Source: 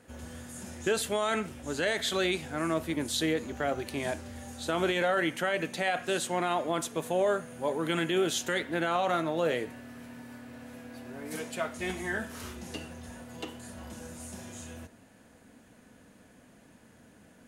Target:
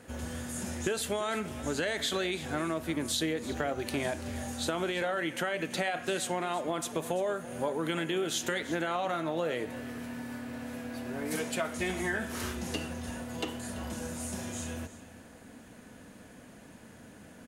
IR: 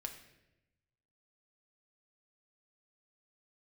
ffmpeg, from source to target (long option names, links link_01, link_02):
-filter_complex "[0:a]acompressor=threshold=-34dB:ratio=6,asplit=2[link_01][link_02];[link_02]aecho=0:1:337:0.158[link_03];[link_01][link_03]amix=inputs=2:normalize=0,volume=5.5dB"